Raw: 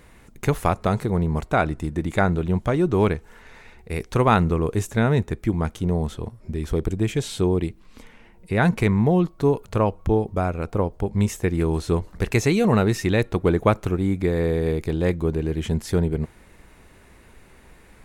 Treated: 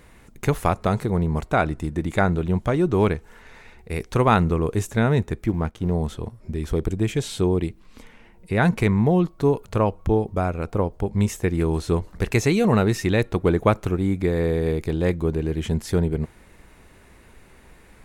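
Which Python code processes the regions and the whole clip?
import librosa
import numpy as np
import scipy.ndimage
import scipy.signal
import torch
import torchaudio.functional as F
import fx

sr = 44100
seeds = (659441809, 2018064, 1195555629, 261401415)

y = fx.chain(x, sr, fx.law_mismatch(coded='A'),
    fx.high_shelf(hz=4500.0, db=-10.0), at=(5.46, 5.94))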